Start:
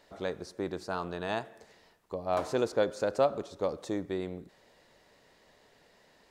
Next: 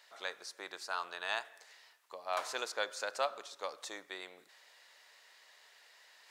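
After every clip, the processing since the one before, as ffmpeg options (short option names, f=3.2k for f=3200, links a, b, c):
-af "highpass=1.3k,areverse,acompressor=mode=upward:threshold=-60dB:ratio=2.5,areverse,volume=3.5dB"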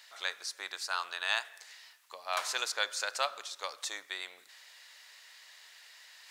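-af "tiltshelf=f=810:g=-8.5"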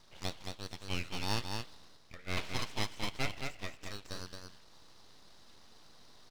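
-af "highpass=f=480:t=q:w=0.5412,highpass=f=480:t=q:w=1.307,lowpass=f=3.2k:t=q:w=0.5176,lowpass=f=3.2k:t=q:w=0.7071,lowpass=f=3.2k:t=q:w=1.932,afreqshift=80,aeval=exprs='abs(val(0))':c=same,aecho=1:1:221:0.562"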